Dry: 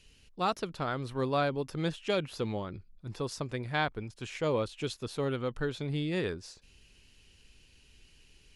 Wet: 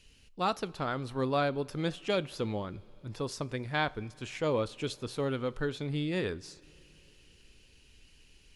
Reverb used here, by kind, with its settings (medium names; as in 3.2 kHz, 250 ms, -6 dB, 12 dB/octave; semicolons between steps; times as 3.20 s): two-slope reverb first 0.34 s, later 4.5 s, from -18 dB, DRR 16.5 dB